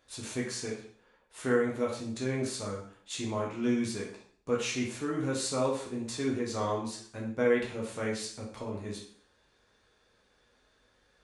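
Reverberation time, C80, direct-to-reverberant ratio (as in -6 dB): 0.55 s, 9.0 dB, -3.5 dB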